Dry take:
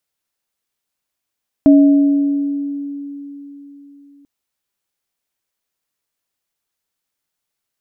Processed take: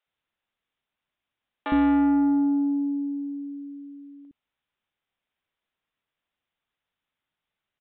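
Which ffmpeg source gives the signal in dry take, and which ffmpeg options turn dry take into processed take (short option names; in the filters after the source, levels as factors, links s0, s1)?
-f lavfi -i "aevalsrc='0.631*pow(10,-3*t/3.84)*sin(2*PI*283*t)+0.178*pow(10,-3*t/1.52)*sin(2*PI*631*t)':d=2.59:s=44100"
-filter_complex "[0:a]aresample=8000,asoftclip=type=tanh:threshold=0.119,aresample=44100,acrossover=split=420[s0][s1];[s0]adelay=60[s2];[s2][s1]amix=inputs=2:normalize=0"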